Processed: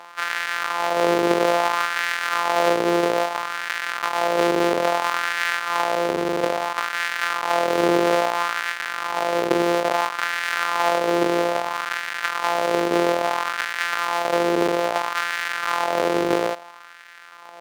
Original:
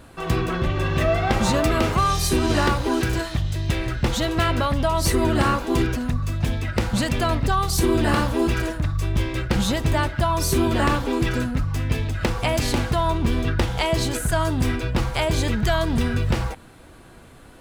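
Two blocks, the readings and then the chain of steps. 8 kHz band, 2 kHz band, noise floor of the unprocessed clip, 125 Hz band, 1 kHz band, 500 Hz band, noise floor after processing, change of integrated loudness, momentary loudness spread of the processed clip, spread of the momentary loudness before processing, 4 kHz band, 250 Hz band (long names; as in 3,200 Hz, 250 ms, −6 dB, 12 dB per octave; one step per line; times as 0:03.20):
−3.5 dB, +5.0 dB, −46 dBFS, −18.0 dB, +4.0 dB, +4.0 dB, −43 dBFS, +0.5 dB, 6 LU, 5 LU, 0.0 dB, −3.5 dB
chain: samples sorted by size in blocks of 256 samples
low-pass filter 3,400 Hz 6 dB per octave
in parallel at −2.5 dB: compressor whose output falls as the input rises −28 dBFS, ratio −1
on the sum: auto-filter high-pass sine 0.6 Hz 400–1,700 Hz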